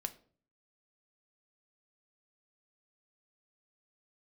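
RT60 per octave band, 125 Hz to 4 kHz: 0.70, 0.65, 0.50, 0.40, 0.35, 0.30 s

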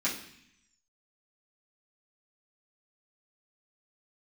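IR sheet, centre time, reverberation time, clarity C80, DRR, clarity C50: 27 ms, 0.65 s, 11.5 dB, -9.5 dB, 7.5 dB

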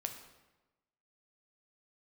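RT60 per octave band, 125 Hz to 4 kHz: 1.2, 1.2, 1.1, 1.1, 0.95, 0.80 s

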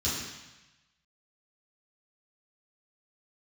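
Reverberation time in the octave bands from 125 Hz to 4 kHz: 1.2, 1.0, 0.90, 1.1, 1.2, 1.1 s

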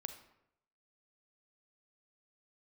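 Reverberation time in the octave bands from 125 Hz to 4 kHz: 0.90, 0.75, 0.85, 0.75, 0.70, 0.50 s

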